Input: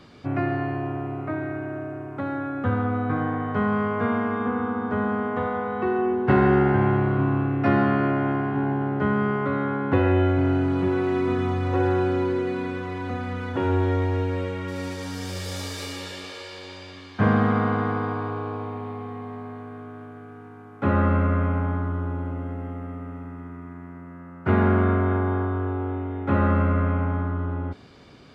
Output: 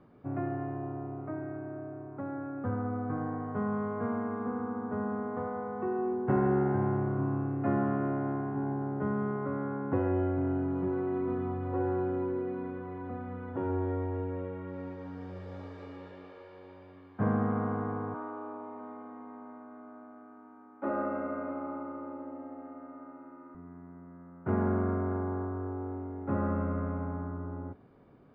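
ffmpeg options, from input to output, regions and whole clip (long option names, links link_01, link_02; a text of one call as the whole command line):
ffmpeg -i in.wav -filter_complex "[0:a]asettb=1/sr,asplit=3[link_01][link_02][link_03];[link_01]atrim=end=18.144[link_04];[link_02]atrim=start=18.14:end=23.55,asetpts=PTS-STARTPTS,afade=type=in:duration=0.004:curve=qsin,afade=type=out:start_time=5.406:duration=0.004:curve=qsin,highpass=360,lowpass=4200,aecho=1:1:3.3:0.99,atrim=end_sample=238581,aecho=1:1:652:0.251,atrim=end_sample=238581[link_05];[link_03]atrim=start=23.546[link_06];[link_04][link_05]acrossfade=duration=0.004:curve1=hsin:curve2=qsin[link_07];[link_07][link_06]acrossfade=duration=0.004:curve1=qsin:curve2=hsin,lowpass=1100,equalizer=frequency=75:width=4.2:gain=-12,volume=-8dB" out.wav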